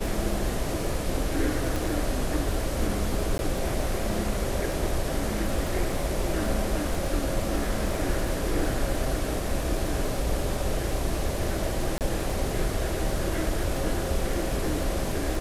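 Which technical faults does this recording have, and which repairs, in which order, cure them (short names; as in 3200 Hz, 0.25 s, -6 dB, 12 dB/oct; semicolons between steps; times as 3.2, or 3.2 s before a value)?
crackle 29/s -32 dBFS
1.76 pop
3.38–3.39 gap 11 ms
11.98–12.01 gap 28 ms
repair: de-click; interpolate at 3.38, 11 ms; interpolate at 11.98, 28 ms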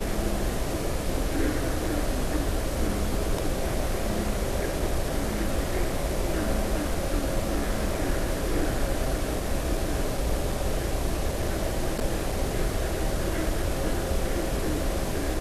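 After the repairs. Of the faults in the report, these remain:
none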